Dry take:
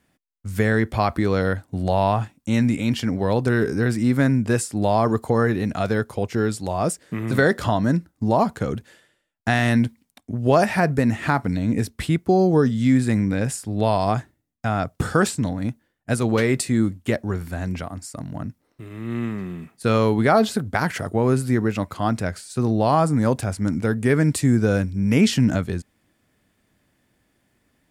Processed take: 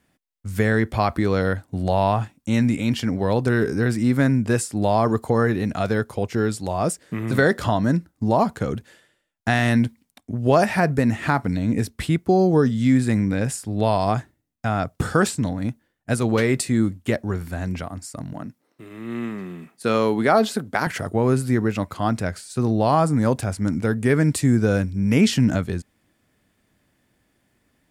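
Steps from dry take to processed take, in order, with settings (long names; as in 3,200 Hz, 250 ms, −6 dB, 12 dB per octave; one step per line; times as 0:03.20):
0:18.33–0:20.87: high-pass filter 190 Hz 12 dB per octave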